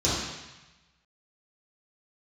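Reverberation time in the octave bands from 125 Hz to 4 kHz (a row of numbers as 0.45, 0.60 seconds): 1.3, 1.0, 0.95, 1.2, 1.2, 1.1 seconds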